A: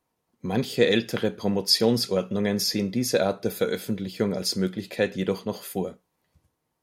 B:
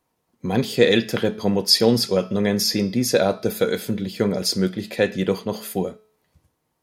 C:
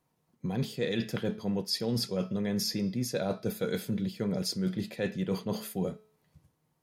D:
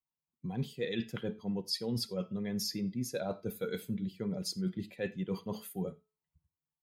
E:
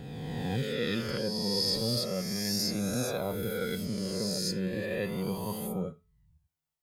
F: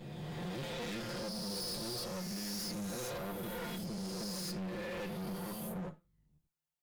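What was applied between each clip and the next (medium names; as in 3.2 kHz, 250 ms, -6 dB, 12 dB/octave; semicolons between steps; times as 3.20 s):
de-hum 215.7 Hz, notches 27; trim +4.5 dB
peaking EQ 150 Hz +10 dB 0.78 oct; reverse; compression, threshold -23 dBFS, peak gain reduction 13.5 dB; reverse; trim -5 dB
expander on every frequency bin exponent 1.5; on a send at -19 dB: reverberation, pre-delay 39 ms; on the sum: trim -2 dB
reverse spectral sustain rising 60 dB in 2.18 s; flange 0.34 Hz, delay 0.7 ms, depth 1.4 ms, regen +59%; trim +5 dB
comb filter that takes the minimum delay 5.7 ms; hard clipper -34 dBFS, distortion -8 dB; trim -3.5 dB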